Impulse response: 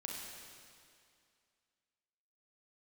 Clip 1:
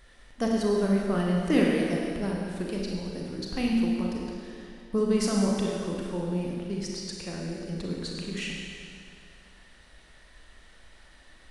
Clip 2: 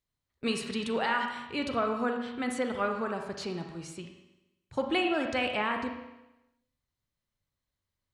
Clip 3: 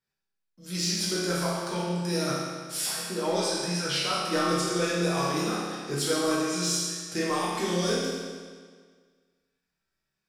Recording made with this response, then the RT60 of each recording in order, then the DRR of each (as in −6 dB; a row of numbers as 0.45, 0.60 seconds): 1; 2.3, 0.95, 1.7 seconds; −2.0, 4.0, −8.0 decibels